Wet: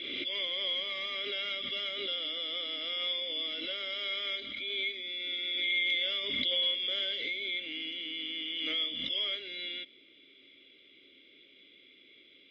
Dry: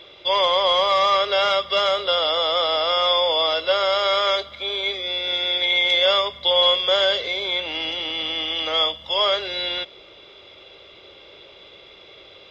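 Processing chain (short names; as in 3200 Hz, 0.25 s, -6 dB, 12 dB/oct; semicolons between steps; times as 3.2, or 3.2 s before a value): vowel filter i; backwards sustainer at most 25 dB/s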